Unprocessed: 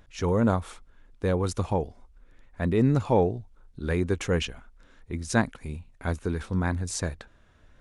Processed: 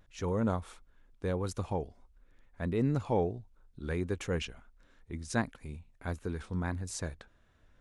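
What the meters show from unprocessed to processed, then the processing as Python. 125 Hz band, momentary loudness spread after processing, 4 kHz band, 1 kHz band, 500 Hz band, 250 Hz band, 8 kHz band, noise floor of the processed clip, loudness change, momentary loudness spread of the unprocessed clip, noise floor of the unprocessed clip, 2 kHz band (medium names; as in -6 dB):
-7.5 dB, 15 LU, -8.0 dB, -7.5 dB, -7.5 dB, -7.5 dB, -7.5 dB, -65 dBFS, -7.5 dB, 15 LU, -58 dBFS, -7.5 dB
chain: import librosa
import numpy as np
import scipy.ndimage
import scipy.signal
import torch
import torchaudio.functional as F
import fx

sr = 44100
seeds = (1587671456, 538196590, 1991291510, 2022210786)

y = fx.vibrato(x, sr, rate_hz=1.5, depth_cents=46.0)
y = F.gain(torch.from_numpy(y), -7.5).numpy()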